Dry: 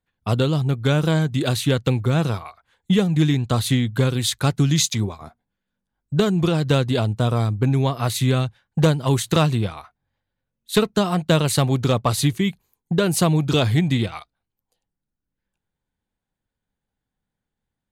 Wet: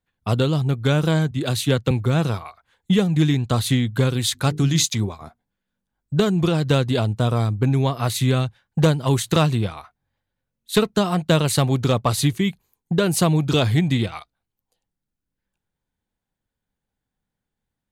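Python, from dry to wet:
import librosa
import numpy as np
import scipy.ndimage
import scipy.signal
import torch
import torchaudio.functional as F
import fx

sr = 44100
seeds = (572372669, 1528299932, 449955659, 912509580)

y = fx.band_widen(x, sr, depth_pct=70, at=(1.31, 1.91))
y = fx.hum_notches(y, sr, base_hz=50, count=9, at=(4.34, 4.83), fade=0.02)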